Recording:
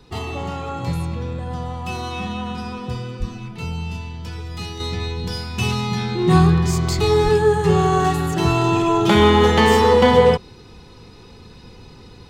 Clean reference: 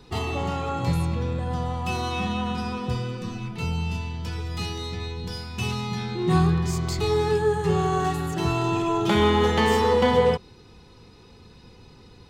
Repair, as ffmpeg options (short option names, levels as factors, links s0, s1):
-filter_complex "[0:a]asplit=3[s0][s1][s2];[s0]afade=t=out:st=3.19:d=0.02[s3];[s1]highpass=f=140:w=0.5412,highpass=f=140:w=1.3066,afade=t=in:st=3.19:d=0.02,afade=t=out:st=3.31:d=0.02[s4];[s2]afade=t=in:st=3.31:d=0.02[s5];[s3][s4][s5]amix=inputs=3:normalize=0,asplit=3[s6][s7][s8];[s6]afade=t=out:st=7.23:d=0.02[s9];[s7]highpass=f=140:w=0.5412,highpass=f=140:w=1.3066,afade=t=in:st=7.23:d=0.02,afade=t=out:st=7.35:d=0.02[s10];[s8]afade=t=in:st=7.35:d=0.02[s11];[s9][s10][s11]amix=inputs=3:normalize=0,agate=range=0.0891:threshold=0.02,asetnsamples=n=441:p=0,asendcmd='4.8 volume volume -6.5dB',volume=1"